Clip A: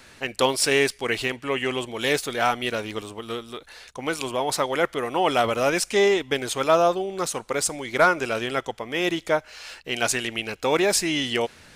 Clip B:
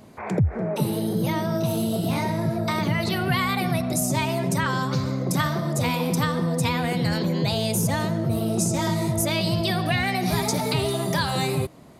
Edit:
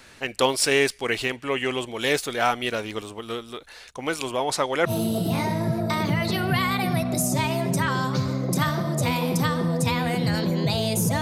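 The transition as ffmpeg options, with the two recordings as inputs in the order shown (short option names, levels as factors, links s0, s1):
-filter_complex "[0:a]asettb=1/sr,asplit=3[s0][s1][s2];[s0]atrim=end=4.444[s3];[s1]atrim=start=4.44:end=4.91,asetpts=PTS-STARTPTS,afade=t=in:d=0.004:c=qsin,afade=t=out:st=0.466:d=0.004:c=qsin,lowpass=11000[s4];[s2]atrim=start=4.906[s5];[s3][s4]acrossfade=d=0.004:c1=hsin:c2=qsin[s6];[s6][s5]acrossfade=d=0.004:c1=qsin:c2=hsin,apad=whole_dur=11.21,atrim=end=11.21,atrim=end=4.91,asetpts=PTS-STARTPTS[s7];[1:a]atrim=start=1.63:end=7.99,asetpts=PTS-STARTPTS[s8];[s7][s8]acrossfade=d=0.06:c1=tri:c2=tri"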